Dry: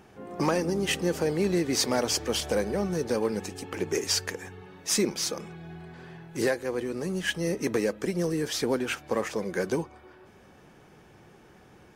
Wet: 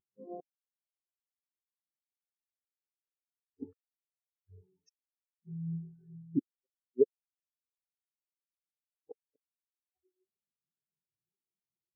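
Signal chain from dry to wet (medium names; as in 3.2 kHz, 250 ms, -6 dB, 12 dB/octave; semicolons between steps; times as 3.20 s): inverted gate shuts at -23 dBFS, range -38 dB; spectral contrast expander 4:1; trim +6 dB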